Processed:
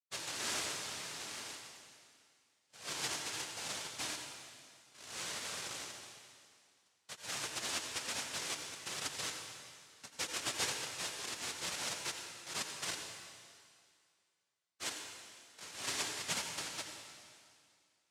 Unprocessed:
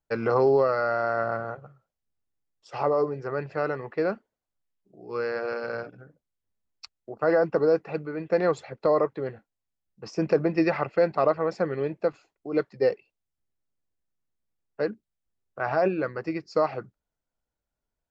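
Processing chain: spectral delay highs late, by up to 0.113 s; reverse; compressor, threshold -30 dBFS, peak gain reduction 13 dB; reverse; ladder band-pass 340 Hz, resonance 45%; noise vocoder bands 1; flange 1.1 Hz, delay 1.2 ms, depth 2 ms, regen -62%; on a send: reverb RT60 2.2 s, pre-delay 76 ms, DRR 3.5 dB; on the sum: gain +6.5 dB

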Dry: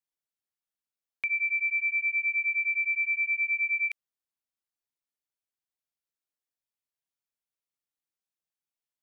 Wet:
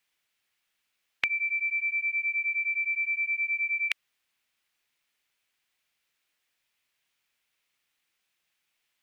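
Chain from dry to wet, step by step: bell 2400 Hz +12.5 dB 1.7 oct; spectral compressor 2:1

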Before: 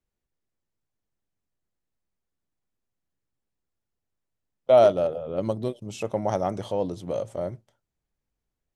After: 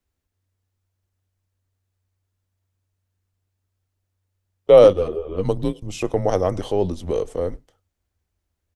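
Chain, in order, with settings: outdoor echo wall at 17 m, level -28 dB; frequency shift -94 Hz; 4.93–5.45 ensemble effect; gain +6 dB

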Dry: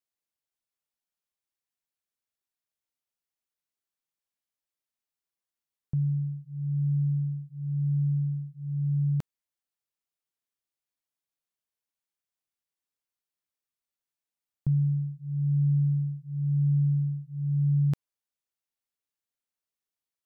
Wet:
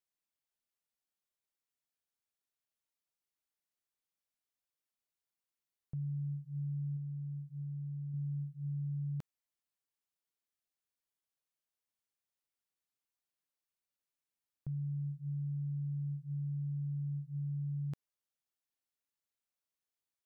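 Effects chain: limiter -31 dBFS, peak gain reduction 11.5 dB; 6.96–8.14 compressor, threshold -36 dBFS, peak gain reduction 3.5 dB; gain -3 dB

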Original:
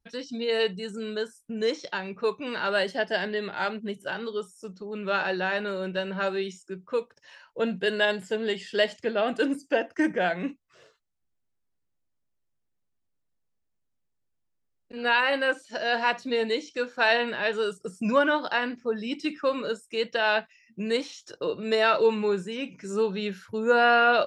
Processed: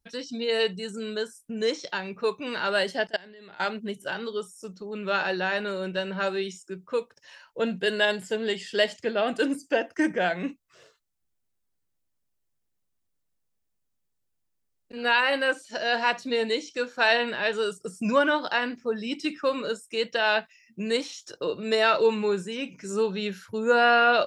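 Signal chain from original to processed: high shelf 5200 Hz +7 dB; 3.07–3.6 level quantiser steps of 24 dB

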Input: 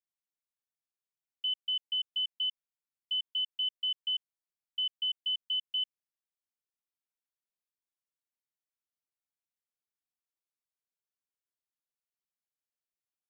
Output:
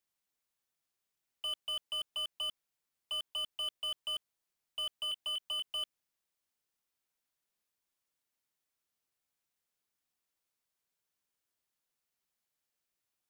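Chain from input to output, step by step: 4.99–5.71 doubler 25 ms -10 dB; slew limiter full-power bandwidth 23 Hz; gain +7.5 dB

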